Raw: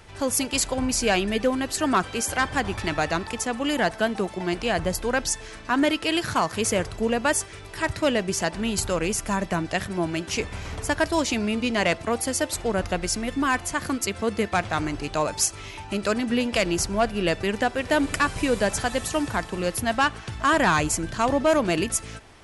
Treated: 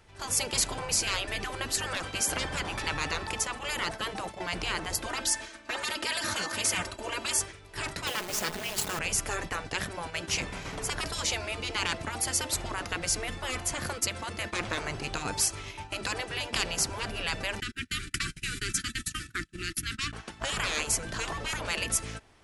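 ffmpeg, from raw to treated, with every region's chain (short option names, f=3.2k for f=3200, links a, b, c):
-filter_complex "[0:a]asettb=1/sr,asplit=3[a][b][c];[a]atrim=end=5.064[d];[b]atrim=start=5.06:end=7.39,asetpts=PTS-STARTPTS,afade=t=in:d=0.004:c=qsin,afade=t=out:st=2.326:d=0.004:c=qsin,highpass=f=230:p=1,aecho=1:1:3.3:0.92,atrim=end_sample=102753[e];[c]atrim=start=7.386[f];[d][e]acrossfade=d=0.004:c1=hsin:c2=qsin[g];[g][f]acrossfade=d=0.004:c1=qsin:c2=hsin,asettb=1/sr,asplit=3[h][i][j];[h]atrim=end=8.074[k];[i]atrim=start=8.07:end=8.99,asetpts=PTS-STARTPTS,afade=t=in:d=0.004:c=qsin,afade=t=out:st=0.916:d=0.004:c=qsin,acrusher=bits=3:dc=4:mix=0:aa=0.000001,aecho=1:1:4.7:0.51,atrim=end_sample=40572[l];[j]atrim=start=8.986[m];[k][l]acrossfade=d=0.004:c1=hsin:c2=qsin[n];[n][m]acrossfade=d=0.004:c1=qsin:c2=hsin,asettb=1/sr,asplit=3[o][p][q];[o]atrim=end=17.604[r];[p]atrim=start=17.6:end=20.13,asetpts=PTS-STARTPTS,afade=t=in:d=0.004:c=qsin,afade=t=out:st=2.526:d=0.004:c=qsin,agate=range=-24dB:threshold=-30dB:ratio=16:release=100:detection=peak,asuperstop=centerf=680:order=12:qfactor=0.69[s];[q]atrim=start=20.126[t];[r][s]acrossfade=d=0.004:c1=hsin:c2=qsin[u];[u][t]acrossfade=d=0.004:c1=qsin:c2=hsin,afftfilt=real='re*lt(hypot(re,im),0.178)':imag='im*lt(hypot(re,im),0.178)':win_size=1024:overlap=0.75,agate=range=-10dB:threshold=-37dB:ratio=16:detection=peak"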